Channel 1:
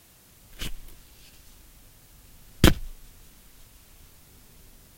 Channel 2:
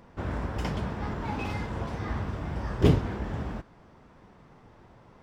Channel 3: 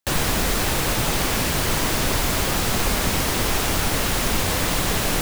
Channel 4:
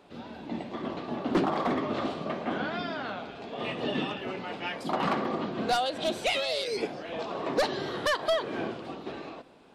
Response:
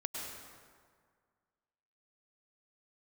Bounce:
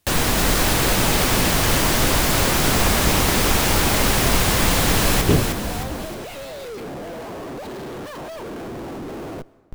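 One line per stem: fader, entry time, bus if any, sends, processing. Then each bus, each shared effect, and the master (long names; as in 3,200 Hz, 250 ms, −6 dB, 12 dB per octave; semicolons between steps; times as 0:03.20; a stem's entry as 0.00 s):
−12.0 dB, 0.00 s, no send, no echo send, no processing
+3.0 dB, 2.45 s, no send, no echo send, no processing
+2.0 dB, 0.00 s, no send, echo send −5 dB, no processing
−4.0 dB, 0.00 s, send −20.5 dB, no echo send, comparator with hysteresis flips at −45 dBFS; tilt shelving filter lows +5 dB, about 1,200 Hz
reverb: on, RT60 1.9 s, pre-delay 93 ms
echo: repeating echo 310 ms, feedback 48%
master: no processing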